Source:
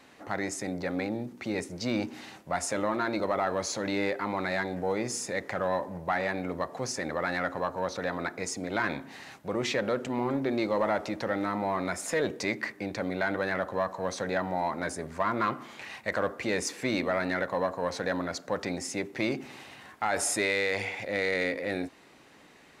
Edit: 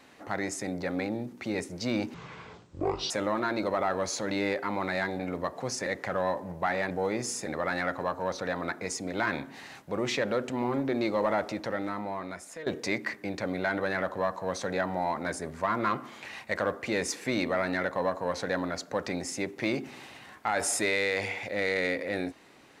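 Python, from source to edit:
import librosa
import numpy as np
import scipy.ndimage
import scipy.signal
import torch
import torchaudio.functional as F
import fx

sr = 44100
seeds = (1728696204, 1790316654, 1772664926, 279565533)

y = fx.edit(x, sr, fx.speed_span(start_s=2.14, length_s=0.53, speed=0.55),
    fx.swap(start_s=4.76, length_s=0.56, other_s=6.36, other_length_s=0.67),
    fx.fade_out_to(start_s=10.97, length_s=1.26, floor_db=-15.0), tone=tone)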